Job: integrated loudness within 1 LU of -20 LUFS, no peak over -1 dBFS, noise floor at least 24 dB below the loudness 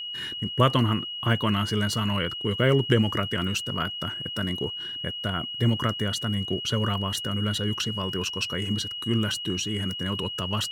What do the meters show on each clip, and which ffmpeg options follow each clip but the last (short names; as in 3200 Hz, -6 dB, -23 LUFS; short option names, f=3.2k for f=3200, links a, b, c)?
steady tone 2900 Hz; tone level -32 dBFS; loudness -26.5 LUFS; peak -6.5 dBFS; loudness target -20.0 LUFS
-> -af "bandreject=f=2.9k:w=30"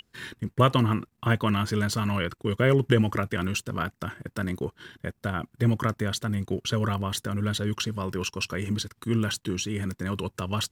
steady tone none; loudness -27.5 LUFS; peak -7.0 dBFS; loudness target -20.0 LUFS
-> -af "volume=7.5dB,alimiter=limit=-1dB:level=0:latency=1"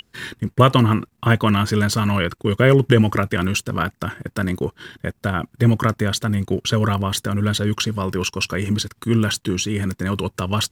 loudness -20.0 LUFS; peak -1.0 dBFS; noise floor -63 dBFS